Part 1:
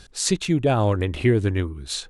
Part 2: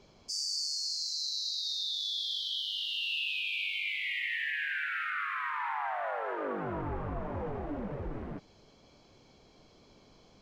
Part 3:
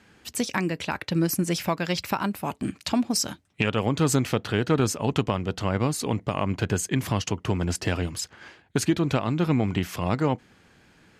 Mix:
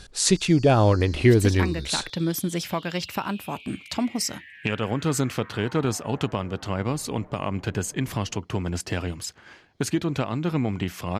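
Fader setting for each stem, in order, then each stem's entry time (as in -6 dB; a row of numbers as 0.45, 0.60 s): +2.0, -12.5, -2.0 dB; 0.00, 0.00, 1.05 s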